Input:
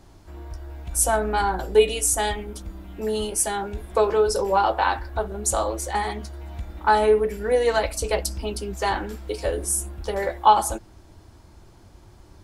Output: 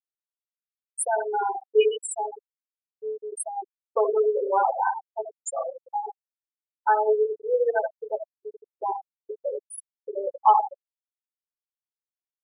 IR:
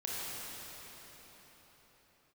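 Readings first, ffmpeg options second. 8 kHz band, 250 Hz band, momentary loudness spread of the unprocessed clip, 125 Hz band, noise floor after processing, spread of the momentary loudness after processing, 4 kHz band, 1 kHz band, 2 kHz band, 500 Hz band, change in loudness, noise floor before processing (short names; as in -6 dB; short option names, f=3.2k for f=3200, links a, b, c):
-11.0 dB, under -10 dB, 17 LU, under -40 dB, under -85 dBFS, 15 LU, under -10 dB, -2.5 dB, -7.5 dB, -3.0 dB, -3.5 dB, -50 dBFS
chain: -af "equalizer=f=76:w=0.51:g=-11.5,aecho=1:1:78|156|234:0.501|0.0902|0.0162,afftfilt=real='re*gte(hypot(re,im),0.316)':imag='im*gte(hypot(re,im),0.316)':win_size=1024:overlap=0.75,volume=-1.5dB" -ar 44100 -c:a aac -b:a 128k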